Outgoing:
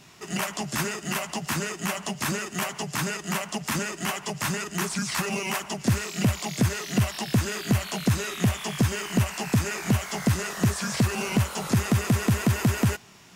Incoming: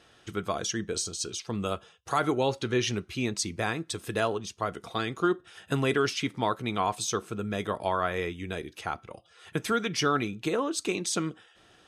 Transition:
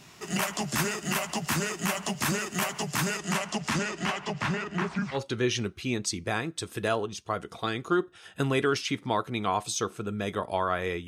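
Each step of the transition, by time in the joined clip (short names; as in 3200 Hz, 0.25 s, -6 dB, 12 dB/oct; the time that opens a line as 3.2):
outgoing
3.18–5.19 LPF 11000 Hz -> 1600 Hz
5.15 switch to incoming from 2.47 s, crossfade 0.08 s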